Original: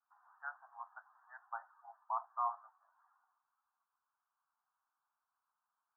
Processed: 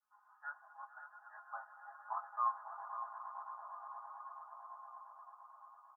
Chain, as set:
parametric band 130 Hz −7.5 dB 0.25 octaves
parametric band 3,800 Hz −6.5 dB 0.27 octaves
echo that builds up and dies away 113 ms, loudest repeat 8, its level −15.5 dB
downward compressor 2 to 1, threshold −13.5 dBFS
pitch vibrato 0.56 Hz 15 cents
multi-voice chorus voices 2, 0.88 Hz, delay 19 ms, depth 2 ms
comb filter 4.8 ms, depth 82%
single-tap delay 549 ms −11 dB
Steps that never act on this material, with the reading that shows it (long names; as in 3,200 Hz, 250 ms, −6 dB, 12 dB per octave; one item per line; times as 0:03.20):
parametric band 130 Hz: nothing at its input below 570 Hz
parametric band 3,800 Hz: nothing at its input above 1,600 Hz
downward compressor, threshold −13.5 dBFS: peak of its input −25.5 dBFS